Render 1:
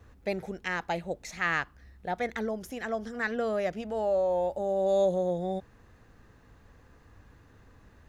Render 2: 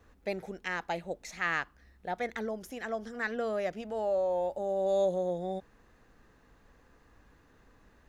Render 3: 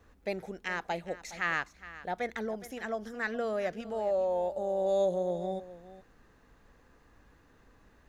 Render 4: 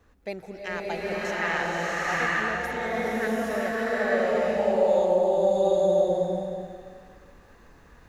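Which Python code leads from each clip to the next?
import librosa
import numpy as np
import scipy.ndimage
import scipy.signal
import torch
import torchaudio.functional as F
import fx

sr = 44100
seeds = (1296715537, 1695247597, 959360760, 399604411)

y1 = fx.peak_eq(x, sr, hz=95.0, db=-9.5, octaves=1.2)
y1 = y1 * librosa.db_to_amplitude(-2.5)
y2 = y1 + 10.0 ** (-16.0 / 20.0) * np.pad(y1, (int(415 * sr / 1000.0), 0))[:len(y1)]
y3 = fx.rev_bloom(y2, sr, seeds[0], attack_ms=870, drr_db=-8.0)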